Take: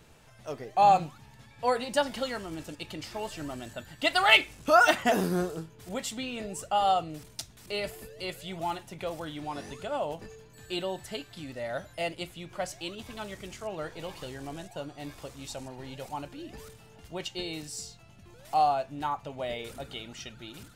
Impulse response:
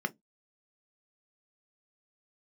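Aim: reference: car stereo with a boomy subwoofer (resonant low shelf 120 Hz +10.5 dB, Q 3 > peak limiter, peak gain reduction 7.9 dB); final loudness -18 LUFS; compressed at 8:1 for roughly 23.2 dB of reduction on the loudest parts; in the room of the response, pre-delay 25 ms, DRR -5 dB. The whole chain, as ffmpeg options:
-filter_complex "[0:a]acompressor=threshold=0.00891:ratio=8,asplit=2[s0][s1];[1:a]atrim=start_sample=2205,adelay=25[s2];[s1][s2]afir=irnorm=-1:irlink=0,volume=0.944[s3];[s0][s3]amix=inputs=2:normalize=0,lowshelf=f=120:t=q:w=3:g=10.5,volume=15,alimiter=limit=0.447:level=0:latency=1"

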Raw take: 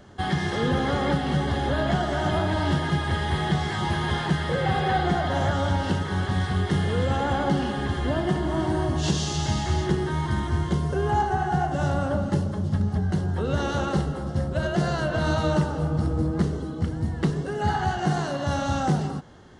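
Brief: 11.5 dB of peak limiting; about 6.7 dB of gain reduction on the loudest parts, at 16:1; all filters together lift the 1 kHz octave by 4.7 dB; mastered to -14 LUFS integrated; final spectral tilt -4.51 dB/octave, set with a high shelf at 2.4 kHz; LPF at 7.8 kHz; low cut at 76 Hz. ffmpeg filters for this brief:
-af "highpass=76,lowpass=7800,equalizer=f=1000:t=o:g=5.5,highshelf=f=2400:g=6,acompressor=threshold=0.0708:ratio=16,volume=8.91,alimiter=limit=0.531:level=0:latency=1"

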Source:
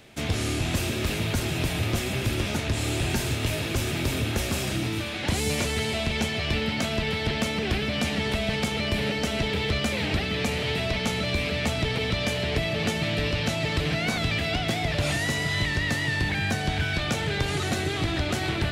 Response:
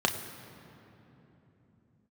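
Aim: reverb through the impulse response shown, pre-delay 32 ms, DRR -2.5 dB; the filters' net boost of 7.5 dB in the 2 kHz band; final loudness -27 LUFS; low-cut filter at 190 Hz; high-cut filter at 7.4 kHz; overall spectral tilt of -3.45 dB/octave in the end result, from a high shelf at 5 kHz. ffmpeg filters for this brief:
-filter_complex "[0:a]highpass=190,lowpass=7400,equalizer=f=2000:t=o:g=8,highshelf=f=5000:g=5.5,asplit=2[s0][s1];[1:a]atrim=start_sample=2205,adelay=32[s2];[s1][s2]afir=irnorm=-1:irlink=0,volume=0.376[s3];[s0][s3]amix=inputs=2:normalize=0,volume=0.376"

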